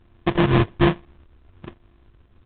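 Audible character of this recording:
a buzz of ramps at a fixed pitch in blocks of 128 samples
phaser sweep stages 6, 1.2 Hz, lowest notch 520–1,600 Hz
aliases and images of a low sample rate 1,400 Hz, jitter 20%
A-law companding

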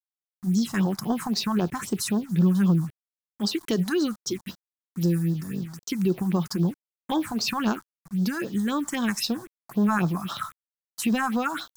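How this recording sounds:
a quantiser's noise floor 8 bits, dither none
phaser sweep stages 4, 3.8 Hz, lowest notch 410–2,300 Hz

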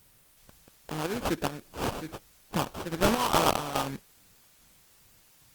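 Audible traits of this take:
aliases and images of a low sample rate 2,000 Hz, jitter 20%
chopped level 2.4 Hz, depth 60%, duty 55%
a quantiser's noise floor 10 bits, dither triangular
Opus

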